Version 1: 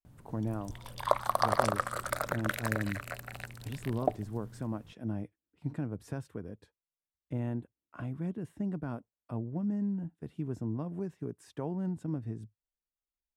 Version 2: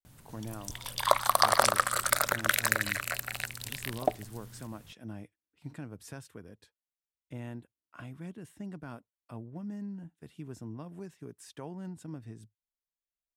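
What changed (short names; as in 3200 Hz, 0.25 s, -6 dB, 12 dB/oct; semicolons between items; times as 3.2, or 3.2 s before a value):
background +6.5 dB; master: add tilt shelf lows -7.5 dB, about 1500 Hz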